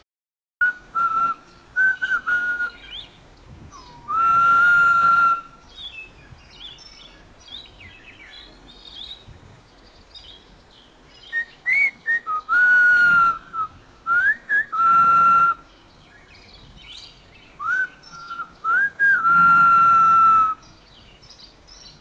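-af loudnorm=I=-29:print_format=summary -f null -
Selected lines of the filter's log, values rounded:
Input Integrated:    -16.2 LUFS
Input True Peak:      -8.2 dBTP
Input LRA:             7.8 LU
Input Threshold:     -29.1 LUFS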